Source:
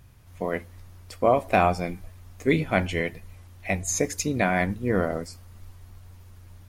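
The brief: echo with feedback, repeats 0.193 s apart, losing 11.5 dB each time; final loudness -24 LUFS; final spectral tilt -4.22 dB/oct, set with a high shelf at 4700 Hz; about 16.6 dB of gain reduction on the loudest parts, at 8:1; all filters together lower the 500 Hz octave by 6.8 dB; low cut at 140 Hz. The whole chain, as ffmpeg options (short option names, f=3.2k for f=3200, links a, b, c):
-af "highpass=140,equalizer=f=500:t=o:g=-9,highshelf=f=4.7k:g=-8,acompressor=threshold=-37dB:ratio=8,aecho=1:1:193|386|579:0.266|0.0718|0.0194,volume=18.5dB"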